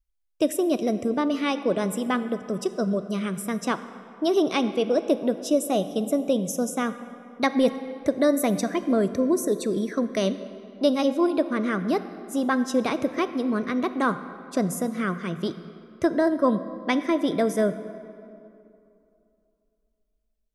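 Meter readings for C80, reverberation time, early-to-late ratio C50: 13.0 dB, 2.7 s, 12.0 dB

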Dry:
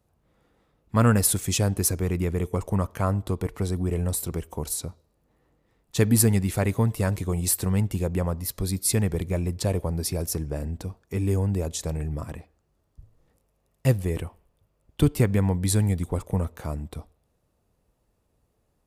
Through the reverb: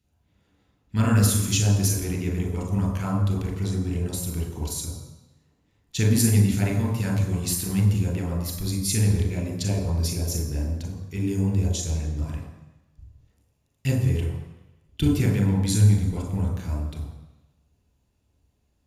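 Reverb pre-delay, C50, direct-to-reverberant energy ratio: 30 ms, 5.5 dB, 1.5 dB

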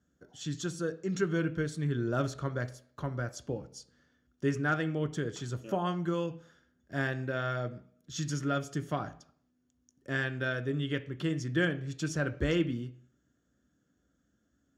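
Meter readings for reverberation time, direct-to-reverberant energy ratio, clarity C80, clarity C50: 0.55 s, 8.5 dB, 20.0 dB, 16.5 dB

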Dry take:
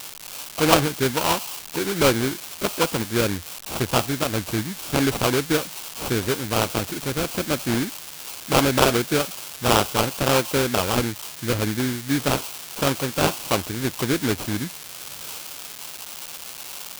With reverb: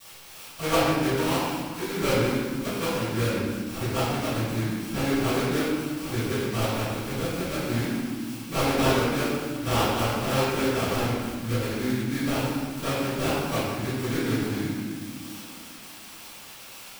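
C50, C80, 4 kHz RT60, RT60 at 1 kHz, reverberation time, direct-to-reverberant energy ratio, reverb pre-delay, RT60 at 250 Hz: -3.0 dB, -0.5 dB, 1.1 s, 1.7 s, 1.8 s, -20.0 dB, 4 ms, 3.0 s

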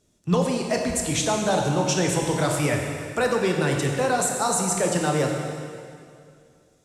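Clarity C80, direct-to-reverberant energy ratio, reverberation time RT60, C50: 3.5 dB, 1.0 dB, 2.3 s, 2.5 dB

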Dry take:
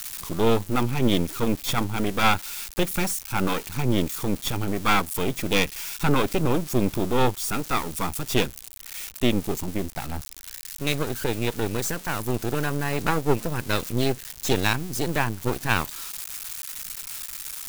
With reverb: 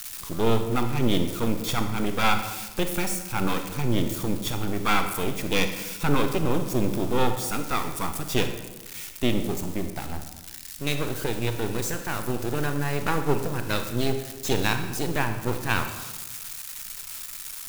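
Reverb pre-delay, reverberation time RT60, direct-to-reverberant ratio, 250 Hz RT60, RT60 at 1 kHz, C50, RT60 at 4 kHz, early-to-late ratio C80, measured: 27 ms, 1.2 s, 6.5 dB, 1.4 s, 1.1 s, 8.0 dB, 0.85 s, 9.5 dB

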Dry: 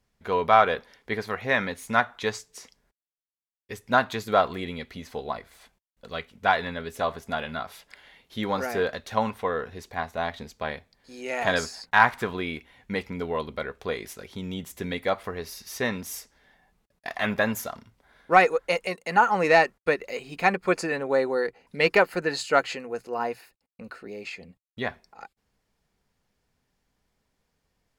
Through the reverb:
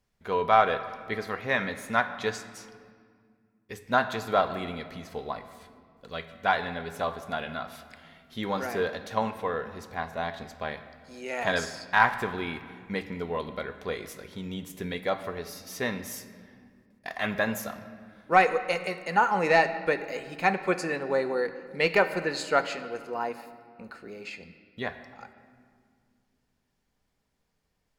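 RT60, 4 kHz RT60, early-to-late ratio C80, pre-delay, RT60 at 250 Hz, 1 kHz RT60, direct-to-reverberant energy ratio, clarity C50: 2.1 s, 1.3 s, 12.5 dB, 5 ms, 3.2 s, 1.9 s, 9.5 dB, 11.5 dB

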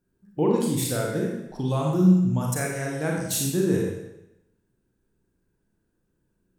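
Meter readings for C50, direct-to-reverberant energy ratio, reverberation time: 1.5 dB, -2.0 dB, 0.90 s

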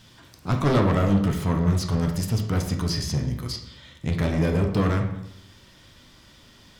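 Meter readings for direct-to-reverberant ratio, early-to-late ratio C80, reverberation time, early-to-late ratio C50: 2.5 dB, 9.5 dB, 0.85 s, 7.0 dB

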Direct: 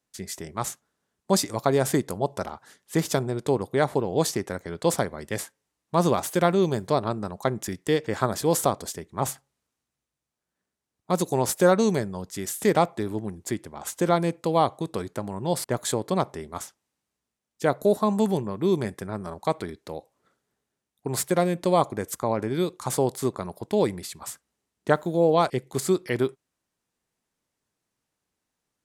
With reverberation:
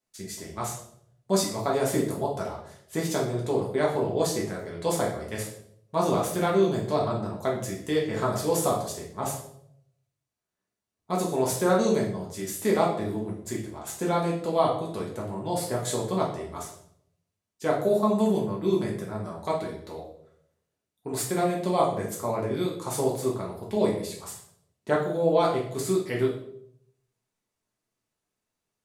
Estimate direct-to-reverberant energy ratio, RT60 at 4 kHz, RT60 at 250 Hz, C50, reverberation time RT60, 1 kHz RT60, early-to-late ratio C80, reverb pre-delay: -4.0 dB, 0.55 s, 0.75 s, 5.5 dB, 0.70 s, 0.60 s, 9.5 dB, 5 ms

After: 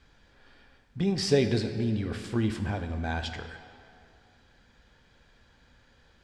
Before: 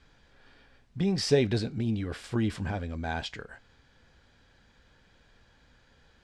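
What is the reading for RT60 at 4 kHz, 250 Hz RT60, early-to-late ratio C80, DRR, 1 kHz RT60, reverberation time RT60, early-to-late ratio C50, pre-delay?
1.6 s, 2.2 s, 9.5 dB, 7.0 dB, 2.4 s, 2.3 s, 8.5 dB, 6 ms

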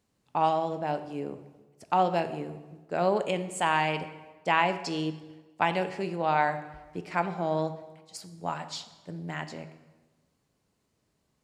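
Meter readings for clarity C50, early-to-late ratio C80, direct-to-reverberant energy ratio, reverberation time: 12.0 dB, 13.5 dB, 9.0 dB, 1.2 s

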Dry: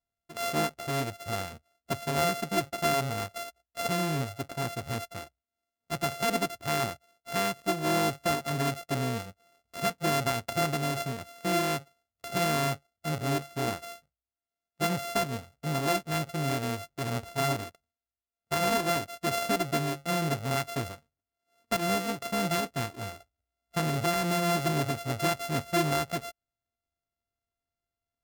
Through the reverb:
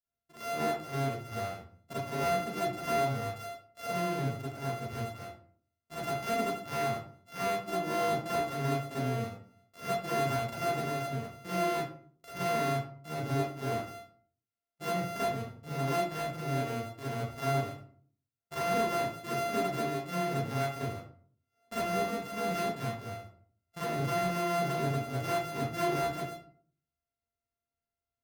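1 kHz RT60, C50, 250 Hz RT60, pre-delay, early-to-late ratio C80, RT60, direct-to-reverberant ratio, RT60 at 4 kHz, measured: 0.50 s, -1.5 dB, 0.65 s, 35 ms, 5.5 dB, 0.50 s, -10.5 dB, 0.30 s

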